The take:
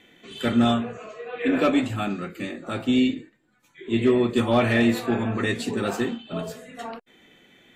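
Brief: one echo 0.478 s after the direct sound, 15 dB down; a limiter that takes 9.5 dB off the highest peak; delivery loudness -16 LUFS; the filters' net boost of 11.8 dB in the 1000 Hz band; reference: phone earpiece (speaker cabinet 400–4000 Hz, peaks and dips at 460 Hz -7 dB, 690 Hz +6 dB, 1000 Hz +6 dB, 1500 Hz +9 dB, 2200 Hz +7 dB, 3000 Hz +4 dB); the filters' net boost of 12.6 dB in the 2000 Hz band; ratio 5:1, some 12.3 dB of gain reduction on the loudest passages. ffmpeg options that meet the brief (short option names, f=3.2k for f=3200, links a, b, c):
-af "equalizer=f=1k:t=o:g=7.5,equalizer=f=2k:t=o:g=5,acompressor=threshold=-27dB:ratio=5,alimiter=level_in=1dB:limit=-24dB:level=0:latency=1,volume=-1dB,highpass=400,equalizer=f=460:t=q:w=4:g=-7,equalizer=f=690:t=q:w=4:g=6,equalizer=f=1k:t=q:w=4:g=6,equalizer=f=1.5k:t=q:w=4:g=9,equalizer=f=2.2k:t=q:w=4:g=7,equalizer=f=3k:t=q:w=4:g=4,lowpass=f=4k:w=0.5412,lowpass=f=4k:w=1.3066,aecho=1:1:478:0.178,volume=15.5dB"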